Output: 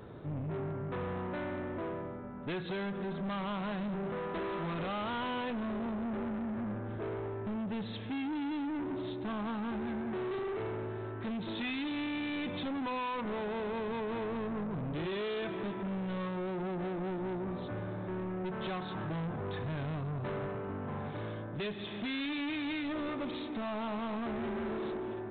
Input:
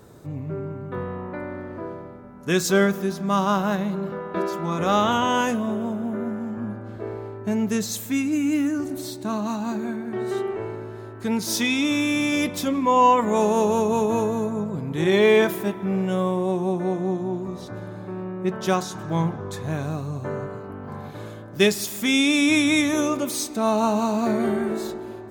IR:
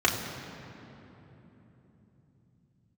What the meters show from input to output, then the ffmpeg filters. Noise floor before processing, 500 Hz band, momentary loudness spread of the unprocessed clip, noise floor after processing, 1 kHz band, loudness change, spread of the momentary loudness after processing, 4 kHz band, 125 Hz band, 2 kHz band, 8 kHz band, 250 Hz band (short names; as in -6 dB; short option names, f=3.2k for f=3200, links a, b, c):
-38 dBFS, -13.5 dB, 16 LU, -41 dBFS, -14.5 dB, -13.5 dB, 4 LU, -14.5 dB, -9.5 dB, -13.5 dB, under -40 dB, -12.5 dB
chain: -af "acompressor=threshold=-24dB:ratio=6,aresample=8000,asoftclip=type=tanh:threshold=-34dB,aresample=44100"